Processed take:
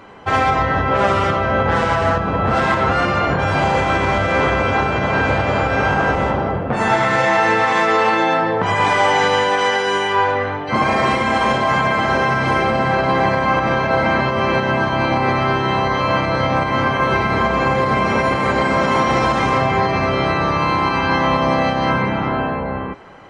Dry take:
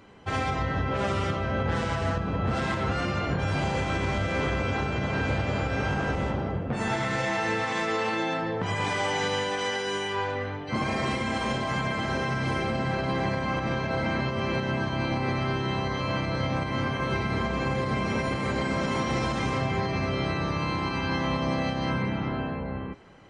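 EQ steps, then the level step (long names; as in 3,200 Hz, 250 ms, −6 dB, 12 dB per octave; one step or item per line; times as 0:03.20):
parametric band 980 Hz +9.5 dB 2.6 octaves
+5.5 dB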